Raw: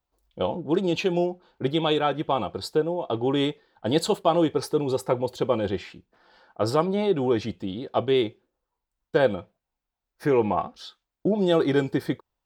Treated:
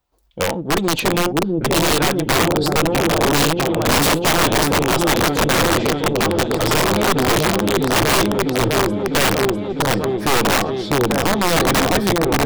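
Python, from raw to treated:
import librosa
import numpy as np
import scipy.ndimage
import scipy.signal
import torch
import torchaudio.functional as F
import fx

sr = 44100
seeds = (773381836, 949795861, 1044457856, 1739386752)

y = fx.diode_clip(x, sr, knee_db=-24.5)
y = fx.echo_opening(y, sr, ms=650, hz=400, octaves=1, feedback_pct=70, wet_db=0)
y = (np.mod(10.0 ** (18.5 / 20.0) * y + 1.0, 2.0) - 1.0) / 10.0 ** (18.5 / 20.0)
y = F.gain(torch.from_numpy(y), 8.5).numpy()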